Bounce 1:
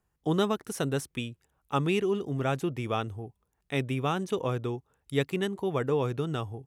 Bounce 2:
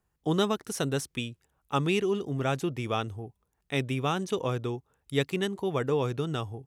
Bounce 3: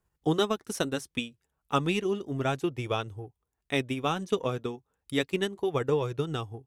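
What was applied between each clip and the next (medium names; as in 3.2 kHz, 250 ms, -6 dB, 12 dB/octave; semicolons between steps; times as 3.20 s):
dynamic bell 5.2 kHz, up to +5 dB, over -52 dBFS, Q 0.83
flange 0.33 Hz, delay 1.9 ms, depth 2.7 ms, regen -61%; transient shaper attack +4 dB, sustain -6 dB; trim +3 dB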